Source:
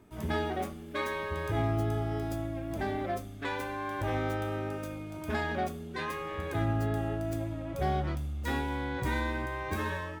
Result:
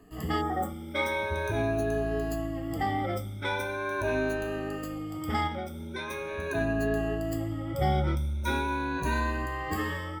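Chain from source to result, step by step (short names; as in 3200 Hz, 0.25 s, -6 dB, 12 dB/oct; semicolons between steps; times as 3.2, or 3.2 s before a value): moving spectral ripple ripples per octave 1.5, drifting +0.42 Hz, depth 19 dB; 0.44–0.79 spectral repair 1900–5900 Hz after; 5.47–6.11 compressor 6:1, threshold -32 dBFS, peak gain reduction 8 dB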